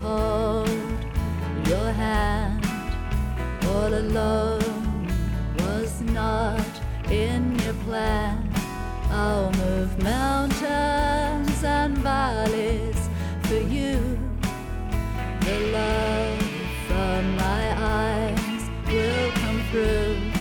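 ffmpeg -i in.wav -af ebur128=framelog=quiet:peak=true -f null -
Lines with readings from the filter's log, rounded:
Integrated loudness:
  I:         -25.1 LUFS
  Threshold: -35.1 LUFS
Loudness range:
  LRA:         2.4 LU
  Threshold: -45.1 LUFS
  LRA low:   -26.1 LUFS
  LRA high:  -23.7 LUFS
True peak:
  Peak:      -11.6 dBFS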